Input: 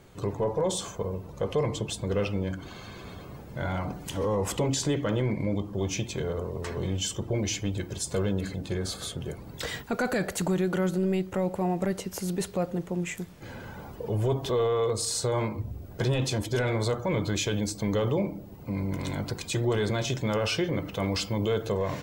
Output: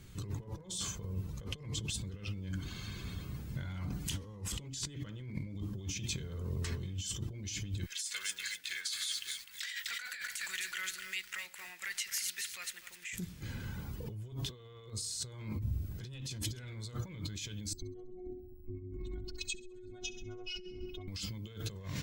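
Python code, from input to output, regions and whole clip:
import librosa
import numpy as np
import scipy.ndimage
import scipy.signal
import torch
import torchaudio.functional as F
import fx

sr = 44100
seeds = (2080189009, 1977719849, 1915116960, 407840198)

y = fx.chain(x, sr, fx.highpass_res(hz=1900.0, q=2.5),
    fx.echo_crushed(ms=253, feedback_pct=35, bits=8, wet_db=-8), at=(7.86, 13.13))
y = fx.chain(y, sr, fx.spec_expand(power=2.1),
    fx.robotise(hz=365.0),
    fx.echo_thinned(ms=66, feedback_pct=62, hz=220.0, wet_db=-14.0), at=(17.73, 21.08))
y = fx.dynamic_eq(y, sr, hz=4600.0, q=0.76, threshold_db=-47.0, ratio=4.0, max_db=3)
y = fx.over_compress(y, sr, threshold_db=-35.0, ratio=-1.0)
y = fx.tone_stack(y, sr, knobs='6-0-2')
y = F.gain(torch.from_numpy(y), 11.5).numpy()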